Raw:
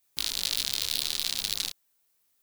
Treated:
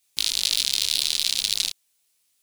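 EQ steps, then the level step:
flat-topped bell 4,900 Hz +8.5 dB 2.6 octaves
−1.5 dB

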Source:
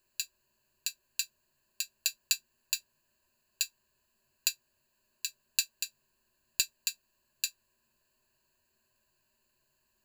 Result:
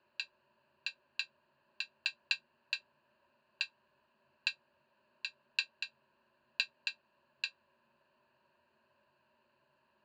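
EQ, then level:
loudspeaker in its box 110–3,500 Hz, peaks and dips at 180 Hz +5 dB, 280 Hz +5 dB, 550 Hz +9 dB, 870 Hz +9 dB, 1,300 Hz +8 dB
+3.0 dB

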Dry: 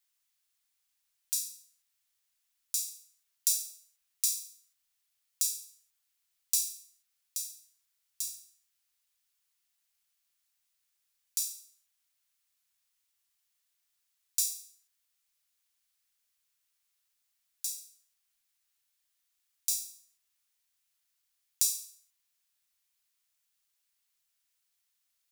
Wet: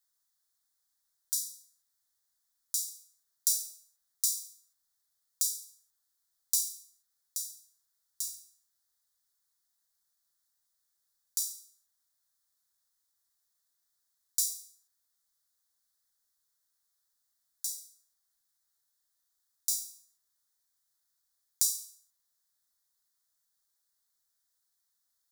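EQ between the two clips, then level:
Butterworth band-reject 2,600 Hz, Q 1.4
0.0 dB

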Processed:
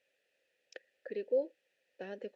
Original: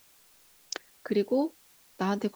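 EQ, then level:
formant filter e
low-shelf EQ 110 Hz +5.5 dB
0.0 dB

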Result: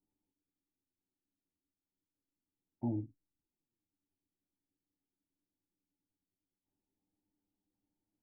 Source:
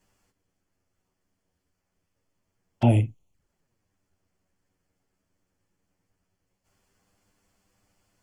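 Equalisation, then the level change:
formant resonators in series u
−6.5 dB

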